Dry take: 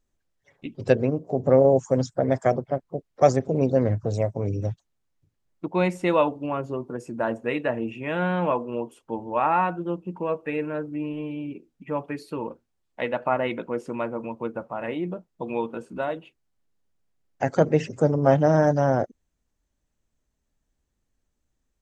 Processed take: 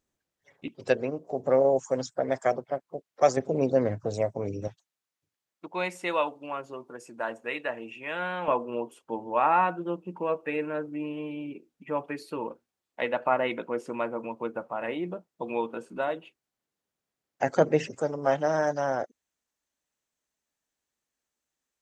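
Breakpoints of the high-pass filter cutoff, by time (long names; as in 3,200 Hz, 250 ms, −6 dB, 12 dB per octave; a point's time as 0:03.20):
high-pass filter 6 dB per octave
170 Hz
from 0:00.68 700 Hz
from 0:03.37 330 Hz
from 0:04.68 1,200 Hz
from 0:08.48 340 Hz
from 0:17.95 1,000 Hz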